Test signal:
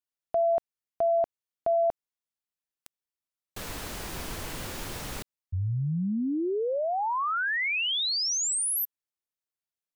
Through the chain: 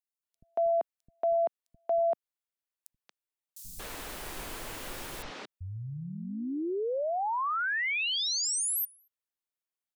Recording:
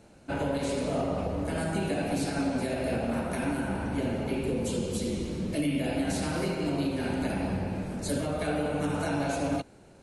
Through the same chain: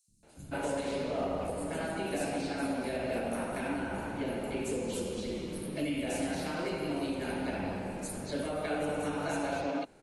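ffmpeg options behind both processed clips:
ffmpeg -i in.wav -filter_complex "[0:a]equalizer=frequency=83:width=0.64:gain=-8,acrossover=split=180|5500[link_01][link_02][link_03];[link_01]adelay=80[link_04];[link_02]adelay=230[link_05];[link_04][link_05][link_03]amix=inputs=3:normalize=0,volume=-2dB" out.wav

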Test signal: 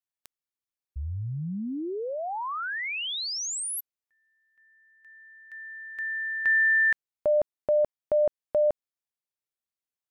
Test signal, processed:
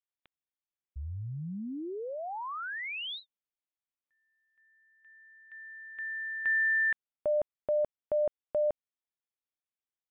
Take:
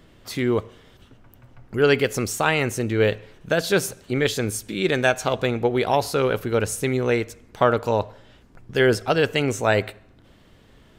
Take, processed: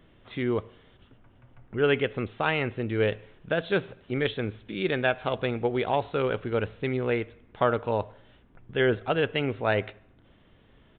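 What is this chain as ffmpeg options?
ffmpeg -i in.wav -af "aresample=8000,aresample=44100,volume=-5.5dB" out.wav

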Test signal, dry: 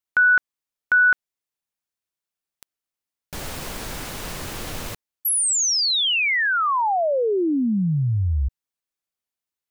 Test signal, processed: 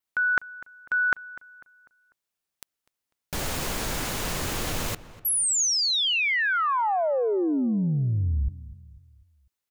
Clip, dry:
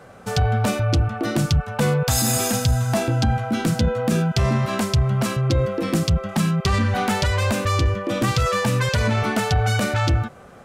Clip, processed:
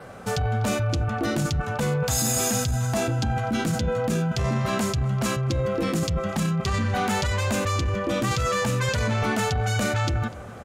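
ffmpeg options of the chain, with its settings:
ffmpeg -i in.wav -filter_complex "[0:a]adynamicequalizer=threshold=0.00447:dfrequency=6800:dqfactor=6.5:tfrequency=6800:tqfactor=6.5:attack=5:release=100:ratio=0.375:range=3.5:mode=boostabove:tftype=bell,areverse,acompressor=threshold=-28dB:ratio=6:attack=14:release=30:knee=6:detection=peak,areverse,asplit=2[link_01][link_02];[link_02]adelay=248,lowpass=frequency=2500:poles=1,volume=-17dB,asplit=2[link_03][link_04];[link_04]adelay=248,lowpass=frequency=2500:poles=1,volume=0.45,asplit=2[link_05][link_06];[link_06]adelay=248,lowpass=frequency=2500:poles=1,volume=0.45,asplit=2[link_07][link_08];[link_08]adelay=248,lowpass=frequency=2500:poles=1,volume=0.45[link_09];[link_01][link_03][link_05][link_07][link_09]amix=inputs=5:normalize=0,volume=3dB" out.wav

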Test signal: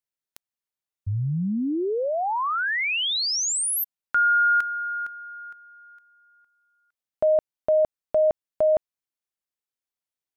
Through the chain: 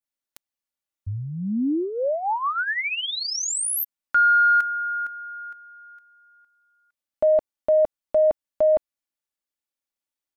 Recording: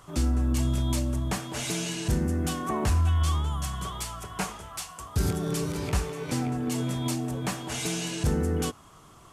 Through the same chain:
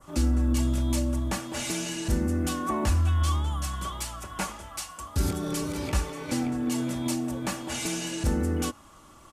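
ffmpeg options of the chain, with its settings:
ffmpeg -i in.wav -af "adynamicequalizer=threshold=0.0126:dfrequency=3700:dqfactor=0.81:tfrequency=3700:tqfactor=0.81:attack=5:release=100:ratio=0.375:range=2.5:mode=cutabove:tftype=bell,acontrast=28,aecho=1:1:3.5:0.51,volume=-5.5dB" out.wav

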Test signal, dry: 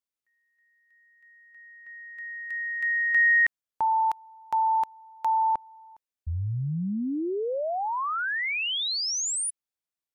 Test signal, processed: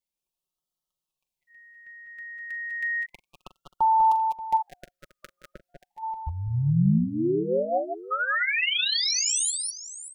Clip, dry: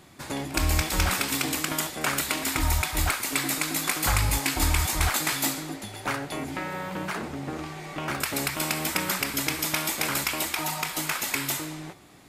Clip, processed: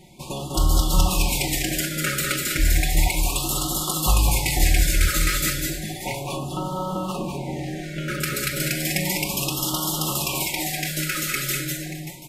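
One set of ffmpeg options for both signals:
ffmpeg -i in.wav -filter_complex "[0:a]lowshelf=frequency=110:gain=9.5,aecho=1:1:5.5:0.65,asplit=2[link_01][link_02];[link_02]aecho=0:1:42|189|195|202|582|733:0.2|0.133|0.376|0.531|0.188|0.126[link_03];[link_01][link_03]amix=inputs=2:normalize=0,afftfilt=real='re*(1-between(b*sr/1024,850*pow(2000/850,0.5+0.5*sin(2*PI*0.33*pts/sr))/1.41,850*pow(2000/850,0.5+0.5*sin(2*PI*0.33*pts/sr))*1.41))':imag='im*(1-between(b*sr/1024,850*pow(2000/850,0.5+0.5*sin(2*PI*0.33*pts/sr))/1.41,850*pow(2000/850,0.5+0.5*sin(2*PI*0.33*pts/sr))*1.41))':win_size=1024:overlap=0.75" out.wav

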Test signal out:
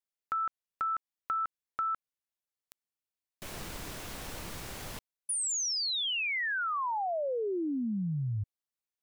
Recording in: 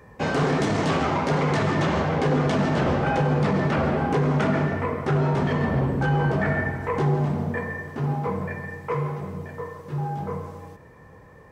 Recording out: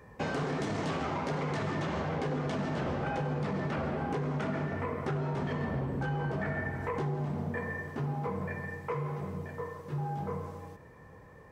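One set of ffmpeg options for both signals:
ffmpeg -i in.wav -af "acompressor=threshold=-26dB:ratio=4,volume=-4.5dB" out.wav

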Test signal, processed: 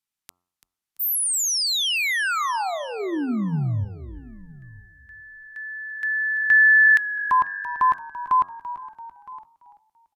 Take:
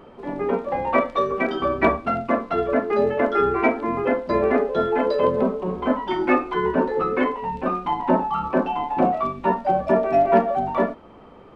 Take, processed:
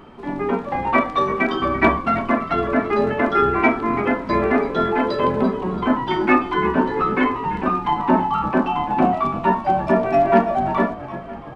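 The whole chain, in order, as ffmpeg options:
ffmpeg -i in.wav -filter_complex "[0:a]asplit=2[link_01][link_02];[link_02]asplit=4[link_03][link_04][link_05][link_06];[link_03]adelay=337,afreqshift=-49,volume=-14dB[link_07];[link_04]adelay=674,afreqshift=-98,volume=-20.9dB[link_08];[link_05]adelay=1011,afreqshift=-147,volume=-27.9dB[link_09];[link_06]adelay=1348,afreqshift=-196,volume=-34.8dB[link_10];[link_07][link_08][link_09][link_10]amix=inputs=4:normalize=0[link_11];[link_01][link_11]amix=inputs=2:normalize=0,aresample=32000,aresample=44100,equalizer=frequency=520:width=2.4:gain=-10.5,bandreject=frequency=89.27:width_type=h:width=4,bandreject=frequency=178.54:width_type=h:width=4,bandreject=frequency=267.81:width_type=h:width=4,bandreject=frequency=357.08:width_type=h:width=4,bandreject=frequency=446.35:width_type=h:width=4,bandreject=frequency=535.62:width_type=h:width=4,bandreject=frequency=624.89:width_type=h:width=4,bandreject=frequency=714.16:width_type=h:width=4,bandreject=frequency=803.43:width_type=h:width=4,bandreject=frequency=892.7:width_type=h:width=4,bandreject=frequency=981.97:width_type=h:width=4,bandreject=frequency=1071.24:width_type=h:width=4,bandreject=frequency=1160.51:width_type=h:width=4,bandreject=frequency=1249.78:width_type=h:width=4,bandreject=frequency=1339.05:width_type=h:width=4,asplit=2[link_12][link_13];[link_13]aecho=0:1:964:0.0944[link_14];[link_12][link_14]amix=inputs=2:normalize=0,volume=5dB" out.wav

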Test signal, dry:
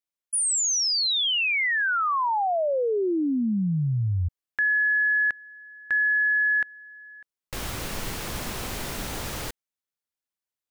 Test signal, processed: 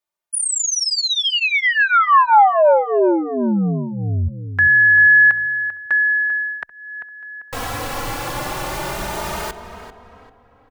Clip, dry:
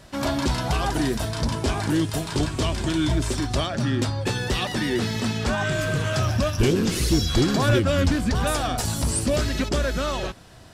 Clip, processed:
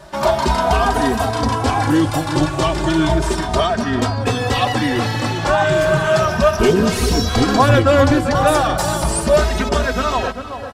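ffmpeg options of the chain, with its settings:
ffmpeg -i in.wav -filter_complex "[0:a]equalizer=frequency=870:width_type=o:width=1.9:gain=10,asplit=2[link_01][link_02];[link_02]adelay=393,lowpass=frequency=2600:poles=1,volume=-10dB,asplit=2[link_03][link_04];[link_04]adelay=393,lowpass=frequency=2600:poles=1,volume=0.41,asplit=2[link_05][link_06];[link_06]adelay=393,lowpass=frequency=2600:poles=1,volume=0.41,asplit=2[link_07][link_08];[link_08]adelay=393,lowpass=frequency=2600:poles=1,volume=0.41[link_09];[link_01][link_03][link_05][link_07][link_09]amix=inputs=5:normalize=0,asplit=2[link_10][link_11];[link_11]adelay=2.9,afreqshift=0.33[link_12];[link_10][link_12]amix=inputs=2:normalize=1,volume=6dB" out.wav

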